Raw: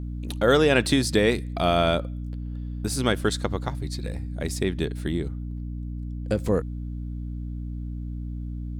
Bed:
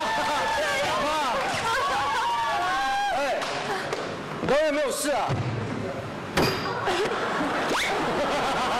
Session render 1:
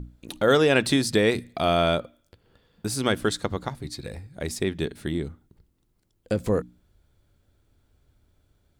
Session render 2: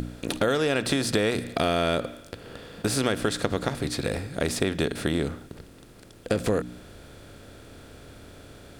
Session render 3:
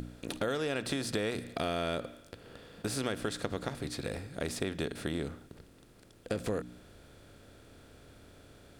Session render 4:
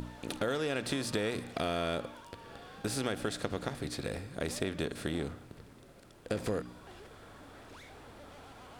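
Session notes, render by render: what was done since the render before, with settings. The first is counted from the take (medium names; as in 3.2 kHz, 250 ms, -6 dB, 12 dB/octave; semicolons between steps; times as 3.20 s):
hum notches 60/120/180/240/300 Hz
spectral levelling over time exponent 0.6; compression 6:1, threshold -20 dBFS, peak gain reduction 8.5 dB
trim -9 dB
add bed -28.5 dB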